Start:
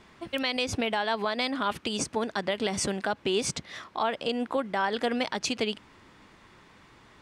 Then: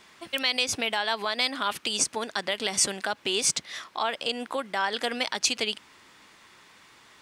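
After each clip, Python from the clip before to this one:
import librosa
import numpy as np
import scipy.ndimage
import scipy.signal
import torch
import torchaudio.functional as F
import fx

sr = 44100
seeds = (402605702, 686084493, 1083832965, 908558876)

y = fx.tilt_eq(x, sr, slope=3.0)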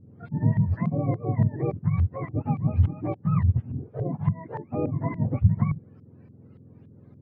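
y = fx.octave_mirror(x, sr, pivot_hz=690.0)
y = fx.filter_lfo_lowpass(y, sr, shape='saw_up', hz=3.5, low_hz=270.0, high_hz=3800.0, q=0.7)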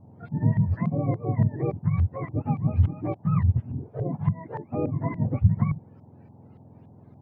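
y = fx.dmg_noise_band(x, sr, seeds[0], low_hz=520.0, high_hz=930.0, level_db=-64.0)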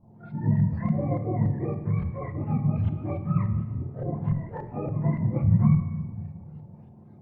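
y = fx.chorus_voices(x, sr, voices=6, hz=1.5, base_ms=30, depth_ms=3.0, mix_pct=60)
y = fx.room_shoebox(y, sr, seeds[1], volume_m3=1700.0, walls='mixed', distance_m=0.89)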